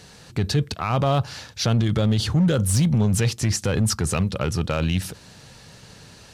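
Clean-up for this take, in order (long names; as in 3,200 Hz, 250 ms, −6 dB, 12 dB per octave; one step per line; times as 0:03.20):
clipped peaks rebuilt −14 dBFS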